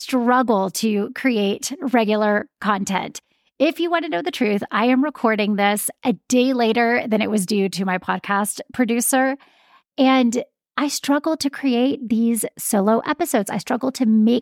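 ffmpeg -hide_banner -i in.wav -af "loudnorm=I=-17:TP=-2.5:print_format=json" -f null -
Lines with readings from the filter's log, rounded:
"input_i" : "-19.8",
"input_tp" : "-5.5",
"input_lra" : "1.7",
"input_thresh" : "-30.0",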